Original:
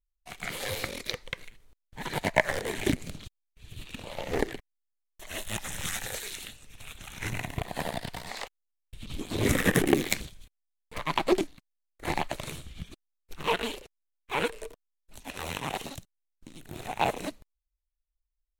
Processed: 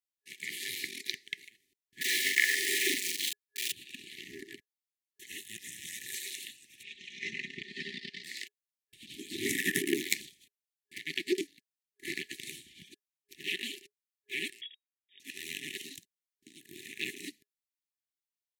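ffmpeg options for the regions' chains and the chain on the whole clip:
ffmpeg -i in.wav -filter_complex "[0:a]asettb=1/sr,asplit=3[link_01][link_02][link_03];[link_01]atrim=end=2.014[link_04];[link_02]atrim=start=2.01:end=3.72,asetpts=PTS-STARTPTS,afade=type=in:duration=0.004:curve=qsin,afade=type=out:start_time=1.706:duration=0.004:curve=qsin,aeval=exprs='val(0)+0.5*0.0708*sgn(val(0))':channel_layout=same,highpass=480,asplit=2[link_05][link_06];[link_06]adelay=42,volume=-2.5dB[link_07];[link_05][link_07]amix=inputs=2:normalize=0,atrim=end_sample=75411[link_08];[link_03]atrim=start=3.716[link_09];[link_04][link_08]acrossfade=duration=0.004:curve1=hsin:curve2=qsin[link_10];[link_10][link_09]acrossfade=duration=0.004:curve1=qsin:curve2=hsin,asettb=1/sr,asplit=3[link_11][link_12][link_13];[link_11]atrim=end=4.234[link_14];[link_12]atrim=start=4.23:end=6.09,asetpts=PTS-STARTPTS,afade=type=in:duration=0.004:curve=qsin,afade=type=out:start_time=1.856:duration=0.004:curve=qsin,lowshelf=frequency=180:gain=9.5,acompressor=threshold=-33dB:ratio=3:attack=3.2:release=140:knee=1:detection=peak[link_15];[link_13]atrim=start=6.086[link_16];[link_14][link_15]acrossfade=duration=0.004:curve1=hsin:curve2=qsin[link_17];[link_17][link_16]acrossfade=duration=0.004:curve1=qsin:curve2=hsin,asettb=1/sr,asplit=3[link_18][link_19][link_20];[link_18]atrim=end=6.834[link_21];[link_19]atrim=start=6.83:end=8.24,asetpts=PTS-STARTPTS,afade=type=in:duration=0.004:curve=qsin,afade=type=out:start_time=1.406:duration=0.004:curve=qsin,lowpass=frequency=5300:width=0.5412,lowpass=frequency=5300:width=1.3066,aecho=1:1:4.9:0.72,atrim=end_sample=62181[link_22];[link_20]atrim=start=8.236[link_23];[link_21][link_22]acrossfade=duration=0.004:curve1=hsin:curve2=qsin[link_24];[link_24][link_23]acrossfade=duration=0.004:curve1=qsin:curve2=hsin,asettb=1/sr,asplit=3[link_25][link_26][link_27];[link_25]atrim=end=14.614[link_28];[link_26]atrim=start=14.61:end=15.2,asetpts=PTS-STARTPTS,afade=type=in:duration=0.004:curve=qsin,afade=type=out:start_time=0.586:duration=0.004:curve=qsin,highpass=frequency=290:poles=1,lowpass=frequency=3200:width_type=q:width=0.5098,lowpass=frequency=3200:width_type=q:width=0.6013,lowpass=frequency=3200:width_type=q:width=0.9,lowpass=frequency=3200:width_type=q:width=2.563,afreqshift=-3800[link_29];[link_27]atrim=start=15.196[link_30];[link_28][link_29]acrossfade=duration=0.004:curve1=hsin:curve2=qsin[link_31];[link_31][link_30]acrossfade=duration=0.004:curve1=qsin:curve2=hsin,afftfilt=real='re*(1-between(b*sr/4096,410,1700))':imag='im*(1-between(b*sr/4096,410,1700))':win_size=4096:overlap=0.75,highpass=280,lowshelf=frequency=440:gain=-5,volume=-1.5dB" out.wav

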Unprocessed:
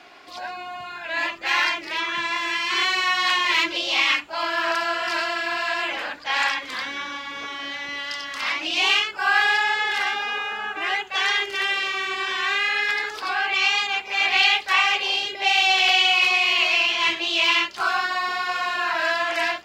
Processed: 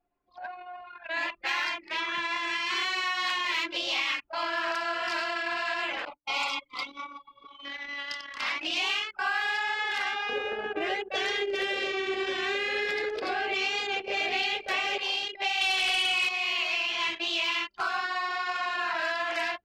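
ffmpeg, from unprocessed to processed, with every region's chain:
ffmpeg -i in.wav -filter_complex "[0:a]asettb=1/sr,asplit=3[link_01][link_02][link_03];[link_01]atrim=end=6.054[link_04];[link_02]atrim=start=6.05:end=7.65,asetpts=PTS-STARTPTS,afade=type=in:duration=0.004:curve=qsin,afade=type=out:start_time=1.596:duration=0.004:curve=qsin,agate=range=-33dB:threshold=-30dB:ratio=3:release=100:detection=peak,asuperstop=centerf=1700:order=12:qfactor=2.8,aecho=1:1:6.9:0.63,atrim=end_sample=70560[link_05];[link_03]atrim=start=7.646[link_06];[link_04][link_05]acrossfade=duration=0.004:curve1=hsin:curve2=qsin[link_07];[link_07][link_06]acrossfade=duration=0.004:curve1=qsin:curve2=hsin,asettb=1/sr,asplit=3[link_08][link_09][link_10];[link_08]atrim=end=10.294[link_11];[link_09]atrim=start=10.29:end=14.98,asetpts=PTS-STARTPTS,afade=type=in:duration=0.004:curve=qsin,afade=type=out:start_time=4.686:duration=0.004:curve=qsin,lowshelf=frequency=740:width_type=q:width=3:gain=9,aecho=1:1:429:0.168,atrim=end_sample=206829[link_12];[link_10]atrim=start=14.976[link_13];[link_11][link_12]acrossfade=duration=0.004:curve1=hsin:curve2=qsin[link_14];[link_14][link_13]acrossfade=duration=0.004:curve1=qsin:curve2=hsin,asettb=1/sr,asplit=3[link_15][link_16][link_17];[link_15]atrim=end=15.614[link_18];[link_16]atrim=start=15.61:end=16.29,asetpts=PTS-STARTPTS,afade=type=in:duration=0.004:curve=qsin,afade=type=out:start_time=0.676:duration=0.004:curve=qsin,equalizer=frequency=840:width_type=o:width=0.55:gain=-4.5,aeval=exprs='0.473*sin(PI/2*1.58*val(0)/0.473)':channel_layout=same[link_19];[link_17]atrim=start=16.286[link_20];[link_18][link_19]acrossfade=duration=0.004:curve1=hsin:curve2=qsin[link_21];[link_21][link_20]acrossfade=duration=0.004:curve1=qsin:curve2=hsin,anlmdn=63.1,acompressor=threshold=-23dB:ratio=4,volume=-3.5dB" out.wav

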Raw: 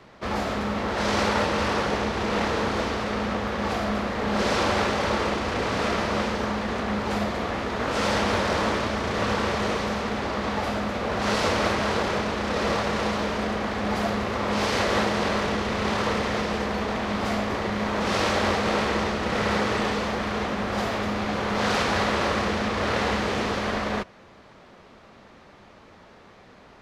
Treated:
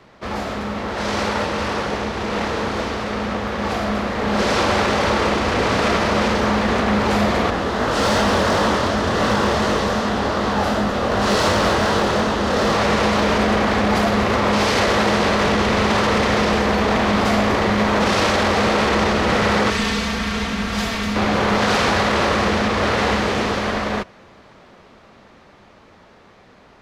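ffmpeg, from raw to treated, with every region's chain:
ffmpeg -i in.wav -filter_complex "[0:a]asettb=1/sr,asplit=3[link_01][link_02][link_03];[link_01]atrim=end=7.504[link_04];[link_02]atrim=start=7.5:end=12.75,asetpts=PTS-STARTPTS,afade=type=in:duration=0.004:curve=qsin,afade=type=out:start_time=5.246:duration=0.004:curve=qsin,equalizer=frequency=2300:width=4.7:gain=-7.5,flanger=delay=19.5:depth=6.5:speed=2.7,asoftclip=type=hard:threshold=-23dB[link_05];[link_03]atrim=start=12.746[link_06];[link_04][link_05]acrossfade=duration=0.004:curve1=hsin:curve2=qsin[link_07];[link_07][link_06]acrossfade=duration=0.004:curve1=qsin:curve2=hsin,asettb=1/sr,asplit=3[link_08][link_09][link_10];[link_08]atrim=end=19.704[link_11];[link_09]atrim=start=19.7:end=21.16,asetpts=PTS-STARTPTS,afade=type=in:duration=0.004:curve=qsin,afade=type=out:start_time=1.456:duration=0.004:curve=qsin,equalizer=frequency=560:width_type=o:width=2.8:gain=-12.5,aecho=1:1:4.4:0.51,atrim=end_sample=64386[link_12];[link_10]atrim=start=21.156[link_13];[link_11][link_12]acrossfade=duration=0.004:curve1=hsin:curve2=qsin[link_14];[link_14][link_13]acrossfade=duration=0.004:curve1=qsin:curve2=hsin,dynaudnorm=framelen=580:gausssize=17:maxgain=11.5dB,alimiter=limit=-10.5dB:level=0:latency=1:release=16,volume=1.5dB" out.wav

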